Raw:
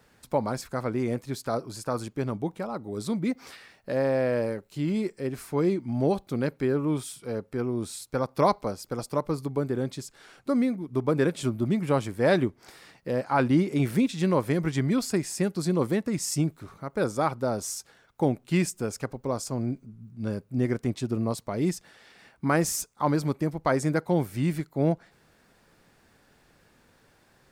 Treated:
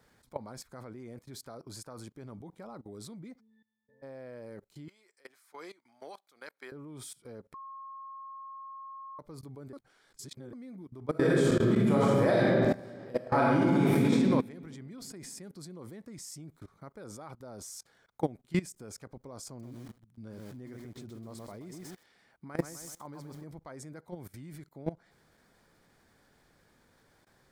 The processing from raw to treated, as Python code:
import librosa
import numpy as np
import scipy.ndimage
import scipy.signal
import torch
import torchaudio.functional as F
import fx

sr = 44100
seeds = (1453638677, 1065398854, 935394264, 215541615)

y = fx.octave_resonator(x, sr, note='A', decay_s=0.76, at=(3.39, 4.02), fade=0.02)
y = fx.highpass(y, sr, hz=1000.0, slope=12, at=(4.88, 6.72))
y = fx.reverb_throw(y, sr, start_s=11.1, length_s=3.02, rt60_s=2.1, drr_db=-7.5)
y = fx.echo_crushed(y, sr, ms=126, feedback_pct=35, bits=7, wet_db=-5.5, at=(19.47, 23.44))
y = fx.edit(y, sr, fx.bleep(start_s=7.54, length_s=1.65, hz=1080.0, db=-22.0),
    fx.reverse_span(start_s=9.73, length_s=0.8), tone=tone)
y = fx.level_steps(y, sr, step_db=21)
y = fx.notch(y, sr, hz=2700.0, q=8.4)
y = y * librosa.db_to_amplitude(-3.0)